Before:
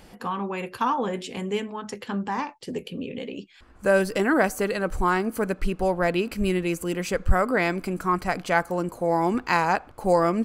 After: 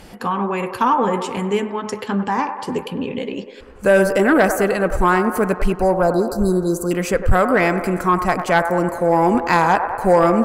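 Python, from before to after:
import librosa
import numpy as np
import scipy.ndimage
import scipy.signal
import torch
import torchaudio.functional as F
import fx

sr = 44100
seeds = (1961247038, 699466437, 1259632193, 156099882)

p1 = fx.cheby1_bandstop(x, sr, low_hz=1500.0, high_hz=4000.0, order=4, at=(5.72, 6.91))
p2 = p1 + fx.echo_wet_bandpass(p1, sr, ms=99, feedback_pct=68, hz=840.0, wet_db=-9, dry=0)
p3 = fx.dynamic_eq(p2, sr, hz=3900.0, q=1.3, threshold_db=-45.0, ratio=4.0, max_db=-7)
y = fx.fold_sine(p3, sr, drive_db=4, ceiling_db=-6.0)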